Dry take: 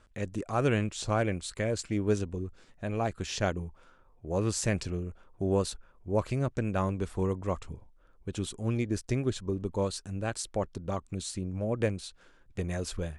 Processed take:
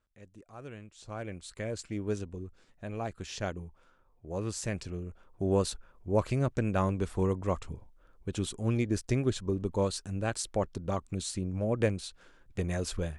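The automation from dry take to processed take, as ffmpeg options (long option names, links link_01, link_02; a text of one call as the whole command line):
ffmpeg -i in.wav -af "volume=1dB,afade=type=in:start_time=0.92:duration=0.75:silence=0.223872,afade=type=in:start_time=4.83:duration=0.86:silence=0.473151" out.wav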